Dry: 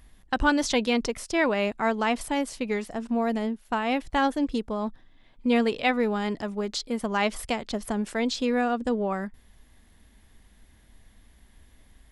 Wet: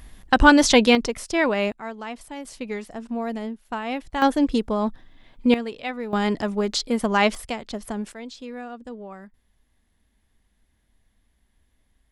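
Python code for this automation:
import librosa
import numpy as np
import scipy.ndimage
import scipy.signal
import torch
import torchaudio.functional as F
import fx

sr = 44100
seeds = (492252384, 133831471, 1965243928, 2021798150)

y = fx.gain(x, sr, db=fx.steps((0.0, 9.0), (0.95, 2.5), (1.72, -9.0), (2.45, -2.5), (4.22, 6.0), (5.54, -6.5), (6.13, 6.0), (7.35, -1.5), (8.12, -11.0)))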